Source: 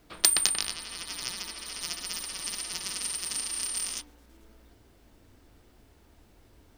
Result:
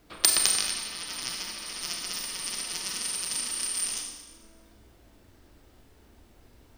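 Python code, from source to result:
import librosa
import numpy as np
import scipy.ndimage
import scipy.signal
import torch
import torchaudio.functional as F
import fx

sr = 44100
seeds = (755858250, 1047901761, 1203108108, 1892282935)

y = fx.rev_schroeder(x, sr, rt60_s=1.1, comb_ms=29, drr_db=2.5)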